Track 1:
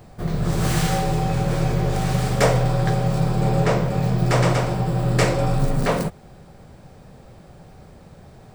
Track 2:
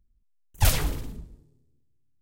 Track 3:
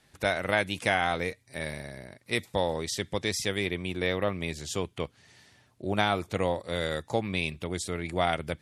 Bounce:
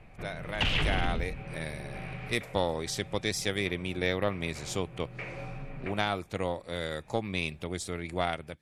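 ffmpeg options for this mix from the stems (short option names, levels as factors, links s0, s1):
-filter_complex "[0:a]acompressor=threshold=0.0447:ratio=6,lowpass=f=2400:t=q:w=6.1,volume=0.299[s0];[1:a]acompressor=threshold=0.0398:ratio=8,aeval=exprs='0.0631*sin(PI/2*1.78*val(0)/0.0631)':c=same,lowpass=f=2900:t=q:w=4.9,volume=0.944[s1];[2:a]dynaudnorm=f=630:g=3:m=4.47,aeval=exprs='0.891*(cos(1*acos(clip(val(0)/0.891,-1,1)))-cos(1*PI/2))+0.2*(cos(2*acos(clip(val(0)/0.891,-1,1)))-cos(2*PI/2))':c=same,volume=0.237,asplit=2[s2][s3];[s3]apad=whole_len=376685[s4];[s0][s4]sidechaincompress=threshold=0.0141:ratio=8:attack=46:release=390[s5];[s5][s1][s2]amix=inputs=3:normalize=0"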